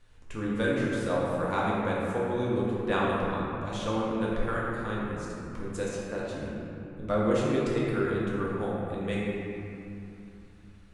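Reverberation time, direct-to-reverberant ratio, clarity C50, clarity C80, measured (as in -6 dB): 2.7 s, -6.5 dB, -3.0 dB, -1.0 dB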